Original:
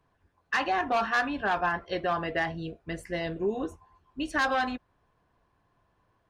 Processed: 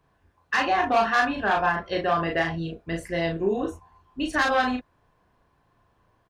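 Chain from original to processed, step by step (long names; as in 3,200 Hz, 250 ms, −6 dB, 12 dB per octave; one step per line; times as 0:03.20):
double-tracking delay 36 ms −3 dB
level +3 dB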